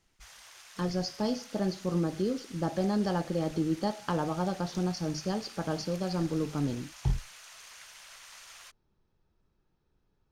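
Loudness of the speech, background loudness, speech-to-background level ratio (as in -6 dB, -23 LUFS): -32.0 LUFS, -49.0 LUFS, 17.0 dB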